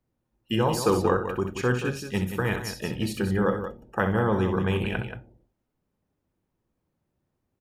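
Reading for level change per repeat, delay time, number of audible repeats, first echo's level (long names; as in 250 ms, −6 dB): repeats not evenly spaced, 64 ms, 2, −8.5 dB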